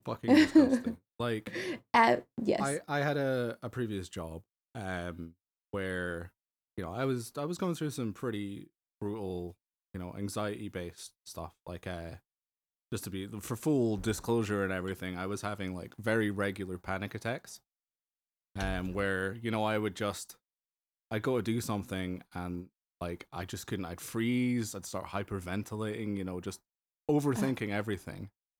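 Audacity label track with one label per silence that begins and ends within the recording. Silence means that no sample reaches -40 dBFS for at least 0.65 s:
12.150000	12.920000	silence
17.560000	18.560000	silence
20.310000	21.120000	silence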